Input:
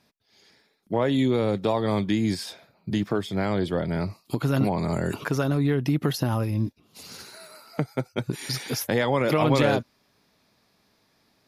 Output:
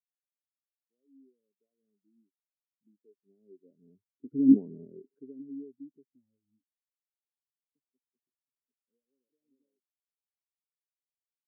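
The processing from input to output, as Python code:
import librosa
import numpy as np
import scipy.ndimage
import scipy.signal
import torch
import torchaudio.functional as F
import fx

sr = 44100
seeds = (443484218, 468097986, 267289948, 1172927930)

y = fx.doppler_pass(x, sr, speed_mps=8, closest_m=2.6, pass_at_s=4.59)
y = fx.small_body(y, sr, hz=(270.0, 390.0), ring_ms=35, db=16)
y = fx.spectral_expand(y, sr, expansion=2.5)
y = F.gain(torch.from_numpy(y), -8.5).numpy()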